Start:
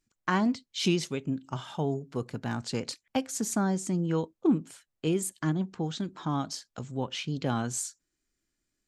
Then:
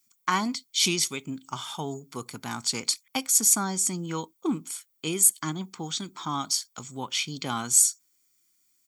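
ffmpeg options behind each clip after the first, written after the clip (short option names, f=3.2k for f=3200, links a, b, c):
-af "aemphasis=mode=production:type=riaa,aecho=1:1:0.9:0.52,volume=1.5dB"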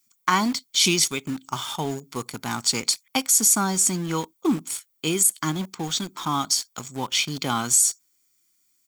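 -filter_complex "[0:a]asplit=2[a][b];[b]acrusher=bits=5:mix=0:aa=0.000001,volume=-5dB[c];[a][c]amix=inputs=2:normalize=0,alimiter=level_in=7.5dB:limit=-1dB:release=50:level=0:latency=1,volume=-6dB"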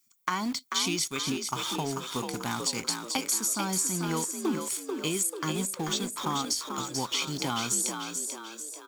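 -filter_complex "[0:a]acompressor=threshold=-25dB:ratio=4,asplit=2[a][b];[b]asplit=6[c][d][e][f][g][h];[c]adelay=439,afreqshift=52,volume=-5.5dB[i];[d]adelay=878,afreqshift=104,volume=-11.7dB[j];[e]adelay=1317,afreqshift=156,volume=-17.9dB[k];[f]adelay=1756,afreqshift=208,volume=-24.1dB[l];[g]adelay=2195,afreqshift=260,volume=-30.3dB[m];[h]adelay=2634,afreqshift=312,volume=-36.5dB[n];[i][j][k][l][m][n]amix=inputs=6:normalize=0[o];[a][o]amix=inputs=2:normalize=0,volume=-2dB"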